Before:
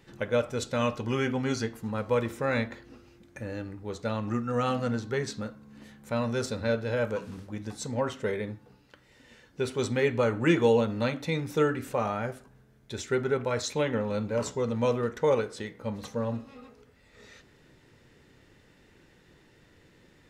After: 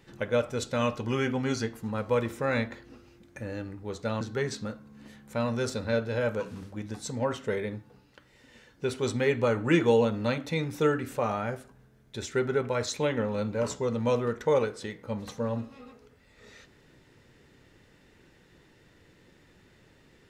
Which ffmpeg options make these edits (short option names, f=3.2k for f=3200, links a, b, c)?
-filter_complex "[0:a]asplit=2[a][b];[a]atrim=end=4.212[c];[b]atrim=start=4.968[d];[c][d]acrossfade=d=0.004:c1=hsin:c2=hsin"